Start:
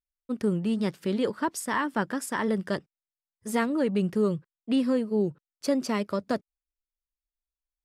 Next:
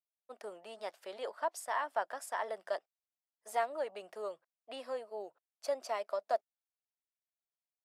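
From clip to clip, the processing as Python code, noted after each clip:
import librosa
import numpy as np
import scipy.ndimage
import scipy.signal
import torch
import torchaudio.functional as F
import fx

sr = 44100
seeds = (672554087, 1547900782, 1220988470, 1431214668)

y = fx.ladder_highpass(x, sr, hz=620.0, resonance_pct=70)
y = F.gain(torch.from_numpy(y), 1.0).numpy()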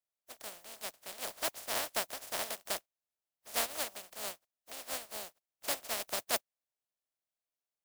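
y = fx.spec_flatten(x, sr, power=0.12)
y = fx.peak_eq(y, sr, hz=630.0, db=9.0, octaves=0.66)
y = F.gain(torch.from_numpy(y), -1.0).numpy()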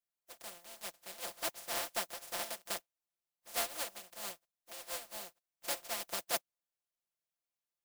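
y = x + 0.89 * np.pad(x, (int(5.8 * sr / 1000.0), 0))[:len(x)]
y = F.gain(torch.from_numpy(y), -5.0).numpy()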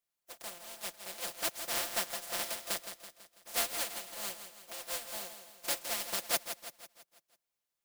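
y = fx.dynamic_eq(x, sr, hz=770.0, q=0.77, threshold_db=-49.0, ratio=4.0, max_db=-4)
y = fx.echo_feedback(y, sr, ms=165, feedback_pct=50, wet_db=-9.5)
y = F.gain(torch.from_numpy(y), 4.0).numpy()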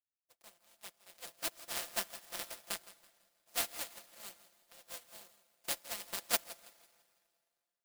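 y = fx.rev_plate(x, sr, seeds[0], rt60_s=4.7, hf_ratio=0.9, predelay_ms=0, drr_db=7.5)
y = fx.power_curve(y, sr, exponent=2.0)
y = F.gain(torch.from_numpy(y), 7.0).numpy()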